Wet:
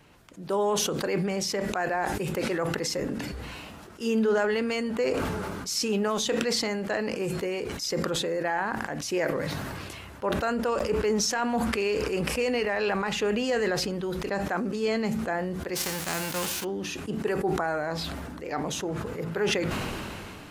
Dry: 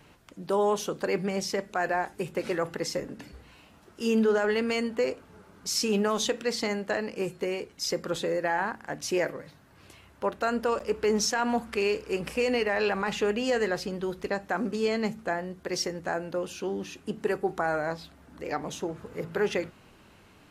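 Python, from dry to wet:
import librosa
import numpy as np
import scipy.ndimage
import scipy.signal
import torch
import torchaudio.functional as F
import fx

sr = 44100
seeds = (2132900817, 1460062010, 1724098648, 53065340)

y = fx.envelope_flatten(x, sr, power=0.3, at=(15.75, 16.63), fade=0.02)
y = fx.sustainer(y, sr, db_per_s=21.0)
y = y * librosa.db_to_amplitude(-1.0)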